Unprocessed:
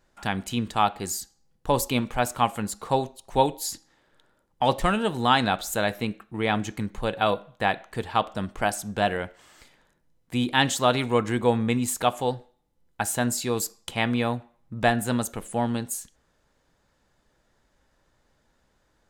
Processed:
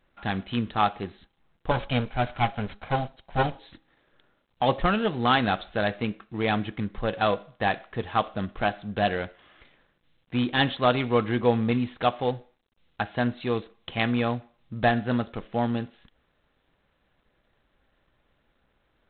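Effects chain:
0:01.71–0:03.59: lower of the sound and its delayed copy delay 1.3 ms
notch filter 910 Hz, Q 10
G.726 24 kbit/s 8,000 Hz

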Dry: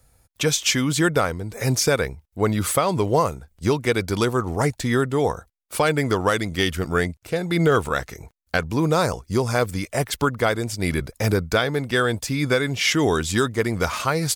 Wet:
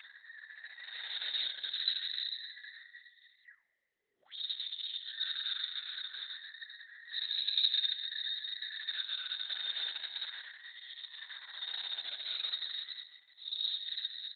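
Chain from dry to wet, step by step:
frequency inversion band by band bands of 2,000 Hz
soft clipping −21 dBFS, distortion −9 dB
downward compressor 5 to 1, threshold −29 dBFS, peak gain reduction 6 dB
random phases in short frames
low-pass filter 9,900 Hz 12 dB per octave
automatic gain control gain up to 12.5 dB
extreme stretch with random phases 11×, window 0.05 s, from 0:06.85
high-pass filter 51 Hz 12 dB per octave
echo with shifted repeats 379 ms, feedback 45%, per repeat +38 Hz, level −19 dB
envelope filter 220–3,700 Hz, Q 20, up, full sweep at −34.5 dBFS
dynamic equaliser 3,800 Hz, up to +3 dB, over −52 dBFS, Q 1.5
Opus 6 kbit/s 48,000 Hz

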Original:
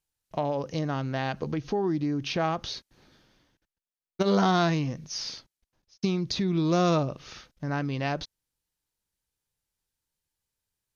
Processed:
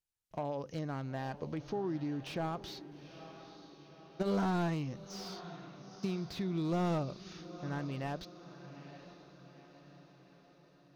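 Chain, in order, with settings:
feedback delay with all-pass diffusion 890 ms, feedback 54%, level −14.5 dB
slew-rate limiting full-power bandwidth 66 Hz
level −9 dB

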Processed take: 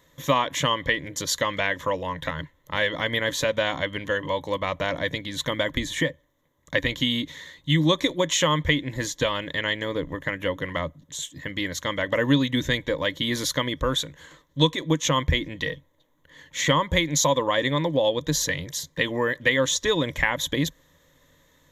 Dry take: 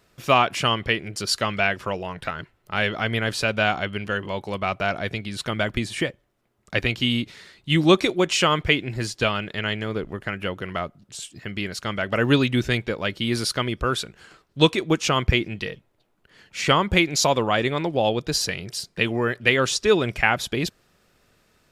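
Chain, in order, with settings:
EQ curve with evenly spaced ripples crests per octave 1.1, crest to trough 14 dB
downward compressor 2 to 1, threshold −21 dBFS, peak gain reduction 9 dB

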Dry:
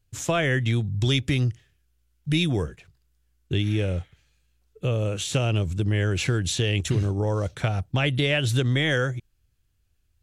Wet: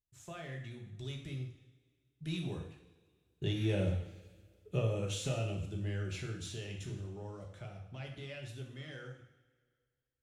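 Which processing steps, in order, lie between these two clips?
one-sided soft clipper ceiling −12 dBFS
source passing by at 0:04.21, 9 m/s, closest 2.8 metres
coupled-rooms reverb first 0.63 s, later 2 s, from −17 dB, DRR 0.5 dB
level −2.5 dB

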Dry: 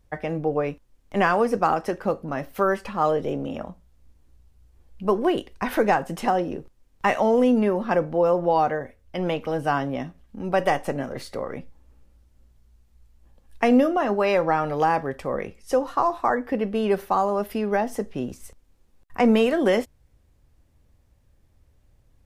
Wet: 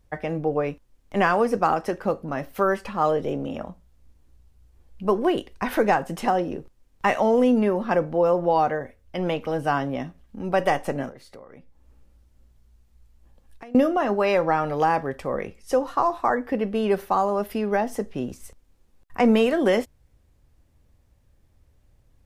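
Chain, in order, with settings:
0:11.09–0:13.75: downward compressor 5 to 1, threshold −44 dBFS, peak gain reduction 25.5 dB

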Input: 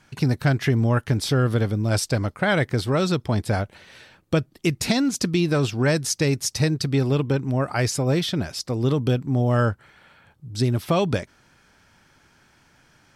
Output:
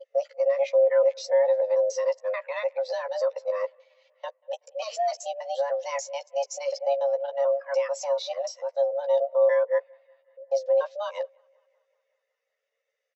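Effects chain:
reversed piece by piece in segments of 146 ms
parametric band 400 Hz −8 dB 2.1 octaves
brickwall limiter −17 dBFS, peak gain reduction 8 dB
frequency shifter +420 Hz
linear-phase brick-wall low-pass 7,800 Hz
double-tracking delay 13 ms −6.5 dB
bucket-brigade delay 188 ms, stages 4,096, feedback 70%, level −22 dB
every bin expanded away from the loudest bin 1.5 to 1

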